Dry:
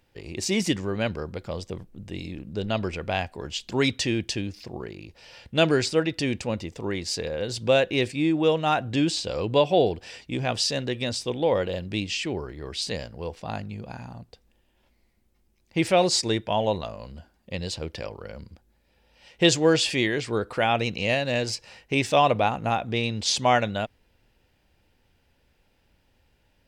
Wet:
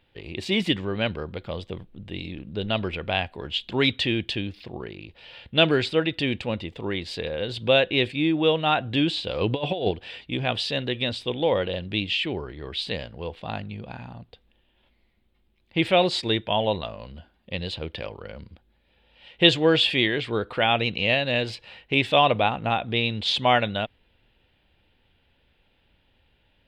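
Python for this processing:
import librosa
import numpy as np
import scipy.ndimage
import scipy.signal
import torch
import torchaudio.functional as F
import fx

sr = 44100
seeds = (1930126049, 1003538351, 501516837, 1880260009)

y = fx.high_shelf_res(x, sr, hz=4600.0, db=-10.0, q=3.0)
y = fx.over_compress(y, sr, threshold_db=-23.0, ratio=-0.5, at=(9.41, 9.91))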